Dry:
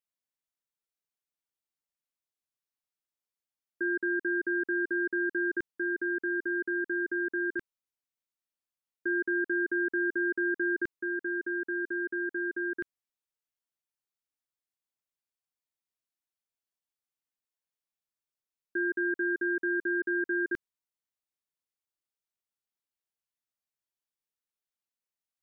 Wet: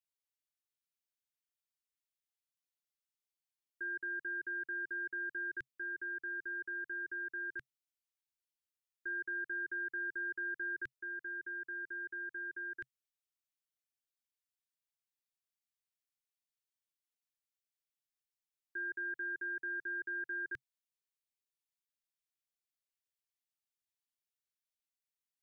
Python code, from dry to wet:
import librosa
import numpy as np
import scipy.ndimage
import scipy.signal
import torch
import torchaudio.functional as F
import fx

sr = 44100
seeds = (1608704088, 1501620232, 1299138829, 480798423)

y = fx.curve_eq(x, sr, hz=(130.0, 200.0, 470.0, 900.0, 1700.0, 3000.0), db=(0, -21, -12, -12, 0, 3))
y = y * librosa.db_to_amplitude(-6.0)